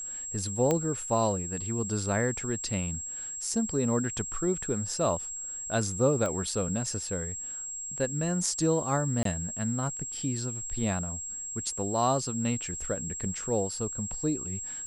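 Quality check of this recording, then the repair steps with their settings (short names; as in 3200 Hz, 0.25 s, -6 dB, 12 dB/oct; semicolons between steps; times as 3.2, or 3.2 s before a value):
tone 7600 Hz -35 dBFS
0.71 pop -13 dBFS
6.26 pop -19 dBFS
9.23–9.25 gap 23 ms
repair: de-click; notch 7600 Hz, Q 30; interpolate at 9.23, 23 ms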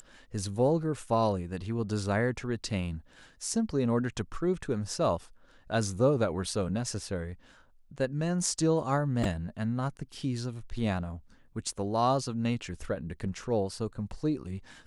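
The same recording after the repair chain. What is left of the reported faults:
0.71 pop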